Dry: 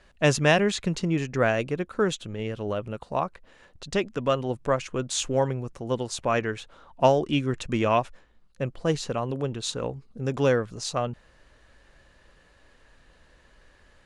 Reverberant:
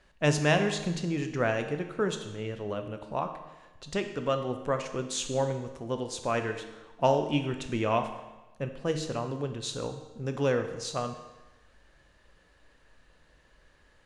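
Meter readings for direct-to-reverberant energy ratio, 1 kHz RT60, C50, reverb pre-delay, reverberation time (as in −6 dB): 6.5 dB, 1.1 s, 8.5 dB, 14 ms, 1.1 s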